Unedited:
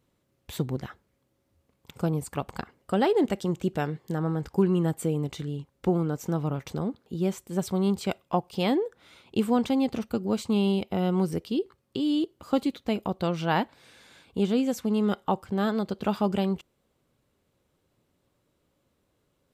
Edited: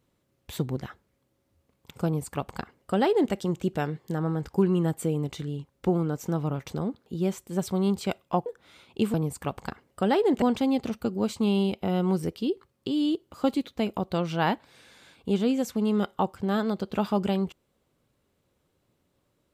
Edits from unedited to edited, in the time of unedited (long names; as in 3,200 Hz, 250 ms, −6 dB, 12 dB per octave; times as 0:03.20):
0:02.05–0:03.33: duplicate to 0:09.51
0:08.46–0:08.83: remove